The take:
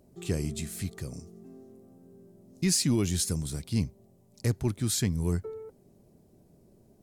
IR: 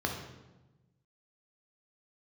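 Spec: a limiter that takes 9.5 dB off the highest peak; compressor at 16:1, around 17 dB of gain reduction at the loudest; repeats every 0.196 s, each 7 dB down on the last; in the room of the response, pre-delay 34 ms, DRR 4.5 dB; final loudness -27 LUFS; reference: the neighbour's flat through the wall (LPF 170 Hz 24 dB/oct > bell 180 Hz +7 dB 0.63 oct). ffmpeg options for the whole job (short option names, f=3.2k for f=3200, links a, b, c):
-filter_complex "[0:a]acompressor=threshold=-39dB:ratio=16,alimiter=level_in=12dB:limit=-24dB:level=0:latency=1,volume=-12dB,aecho=1:1:196|392|588|784|980:0.447|0.201|0.0905|0.0407|0.0183,asplit=2[a][b];[1:a]atrim=start_sample=2205,adelay=34[c];[b][c]afir=irnorm=-1:irlink=0,volume=-11.5dB[d];[a][d]amix=inputs=2:normalize=0,lowpass=f=170:w=0.5412,lowpass=f=170:w=1.3066,equalizer=f=180:t=o:w=0.63:g=7,volume=16.5dB"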